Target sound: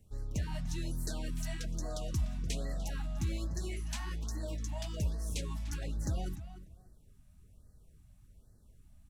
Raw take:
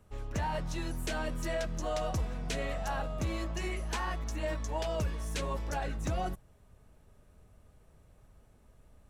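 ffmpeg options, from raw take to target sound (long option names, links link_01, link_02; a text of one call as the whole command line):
ffmpeg -i in.wav -filter_complex "[0:a]equalizer=frequency=970:width_type=o:width=2.6:gain=-13.5,asplit=2[link_01][link_02];[link_02]adelay=297,lowpass=frequency=3600:poles=1,volume=-12dB,asplit=2[link_03][link_04];[link_04]adelay=297,lowpass=frequency=3600:poles=1,volume=0.18[link_05];[link_01][link_03][link_05]amix=inputs=3:normalize=0,afftfilt=real='re*(1-between(b*sr/1024,390*pow(2900/390,0.5+0.5*sin(2*PI*1.2*pts/sr))/1.41,390*pow(2900/390,0.5+0.5*sin(2*PI*1.2*pts/sr))*1.41))':imag='im*(1-between(b*sr/1024,390*pow(2900/390,0.5+0.5*sin(2*PI*1.2*pts/sr))/1.41,390*pow(2900/390,0.5+0.5*sin(2*PI*1.2*pts/sr))*1.41))':win_size=1024:overlap=0.75,volume=1dB" out.wav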